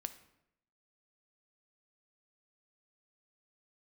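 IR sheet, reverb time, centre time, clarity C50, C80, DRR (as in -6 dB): 0.80 s, 6 ms, 13.5 dB, 16.5 dB, 10.0 dB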